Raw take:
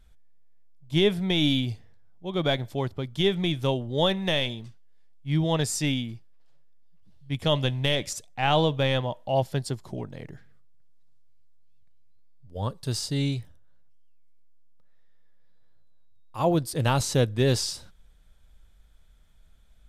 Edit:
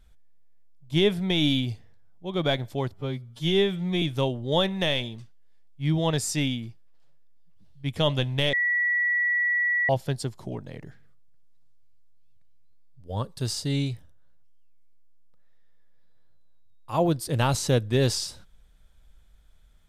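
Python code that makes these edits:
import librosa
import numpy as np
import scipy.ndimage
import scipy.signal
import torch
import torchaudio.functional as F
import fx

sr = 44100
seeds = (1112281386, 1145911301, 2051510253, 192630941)

y = fx.edit(x, sr, fx.stretch_span(start_s=2.94, length_s=0.54, factor=2.0),
    fx.bleep(start_s=7.99, length_s=1.36, hz=1940.0, db=-21.0), tone=tone)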